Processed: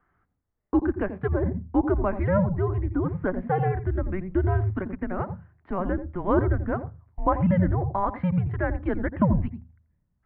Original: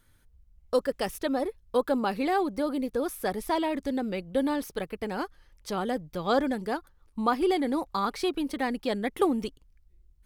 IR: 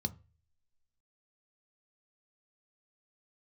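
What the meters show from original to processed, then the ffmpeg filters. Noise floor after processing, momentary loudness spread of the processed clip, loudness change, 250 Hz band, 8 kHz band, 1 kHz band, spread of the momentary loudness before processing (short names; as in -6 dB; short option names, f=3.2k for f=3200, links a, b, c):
-75 dBFS, 8 LU, +3.0 dB, +3.0 dB, under -35 dB, +0.5 dB, 8 LU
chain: -filter_complex "[0:a]highpass=f=160:t=q:w=0.5412,highpass=f=160:t=q:w=1.307,lowpass=f=2.1k:t=q:w=0.5176,lowpass=f=2.1k:t=q:w=0.7071,lowpass=f=2.1k:t=q:w=1.932,afreqshift=-190,asplit=2[a][b];[b]highpass=48[c];[1:a]atrim=start_sample=2205,adelay=85[d];[c][d]afir=irnorm=-1:irlink=0,volume=-14.5dB[e];[a][e]amix=inputs=2:normalize=0,volume=3dB"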